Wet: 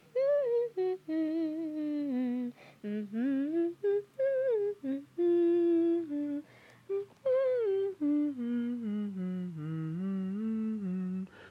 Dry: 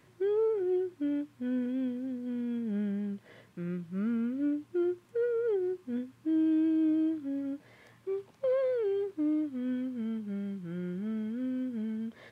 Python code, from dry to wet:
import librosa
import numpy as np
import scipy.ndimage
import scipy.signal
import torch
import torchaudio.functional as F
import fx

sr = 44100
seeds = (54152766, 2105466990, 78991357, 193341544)

y = fx.speed_glide(x, sr, from_pct=132, to_pct=82)